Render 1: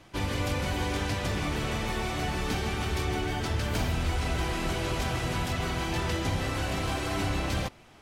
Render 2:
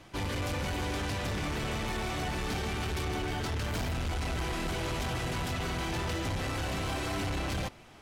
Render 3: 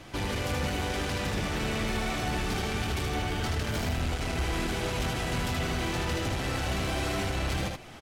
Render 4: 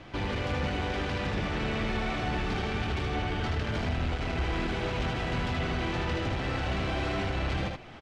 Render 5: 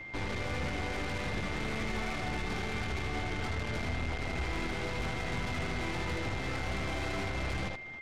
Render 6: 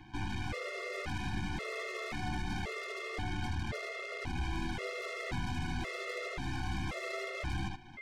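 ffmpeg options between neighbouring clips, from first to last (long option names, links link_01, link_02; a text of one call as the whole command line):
ffmpeg -i in.wav -af "asoftclip=type=tanh:threshold=-30dB,volume=1dB" out.wav
ffmpeg -i in.wav -af "equalizer=frequency=1000:width=4.2:gain=-3,acompressor=threshold=-39dB:ratio=2,aecho=1:1:77:0.668,volume=6dB" out.wav
ffmpeg -i in.wav -af "lowpass=3600" out.wav
ffmpeg -i in.wav -af "bandreject=frequency=2900:width=15,aeval=exprs='0.0891*(cos(1*acos(clip(val(0)/0.0891,-1,1)))-cos(1*PI/2))+0.0141*(cos(8*acos(clip(val(0)/0.0891,-1,1)))-cos(8*PI/2))':channel_layout=same,aeval=exprs='val(0)+0.0141*sin(2*PI*2100*n/s)':channel_layout=same,volume=-5.5dB" out.wav
ffmpeg -i in.wav -af "afftfilt=real='re*gt(sin(2*PI*0.94*pts/sr)*(1-2*mod(floor(b*sr/1024/360),2)),0)':imag='im*gt(sin(2*PI*0.94*pts/sr)*(1-2*mod(floor(b*sr/1024/360),2)),0)':win_size=1024:overlap=0.75" out.wav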